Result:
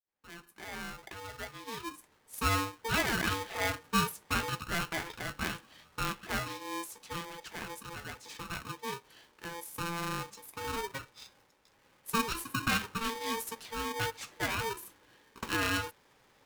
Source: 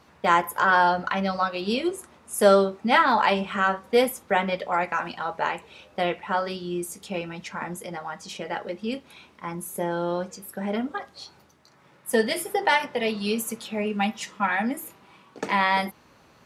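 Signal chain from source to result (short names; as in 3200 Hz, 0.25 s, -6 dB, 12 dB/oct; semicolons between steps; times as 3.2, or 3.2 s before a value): opening faded in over 3.87 s; polarity switched at an audio rate 680 Hz; gain -9 dB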